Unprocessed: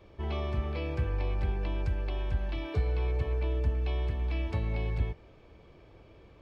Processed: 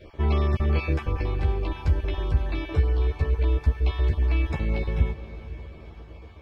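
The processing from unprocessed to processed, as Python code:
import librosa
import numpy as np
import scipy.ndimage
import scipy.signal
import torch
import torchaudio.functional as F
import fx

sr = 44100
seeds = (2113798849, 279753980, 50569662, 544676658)

y = fx.spec_dropout(x, sr, seeds[0], share_pct=23)
y = fx.rider(y, sr, range_db=10, speed_s=0.5)
y = fx.doubler(y, sr, ms=13.0, db=-3.5)
y = fx.echo_diffused(y, sr, ms=520, feedback_pct=50, wet_db=-15.0)
y = F.gain(torch.from_numpy(y), 6.0).numpy()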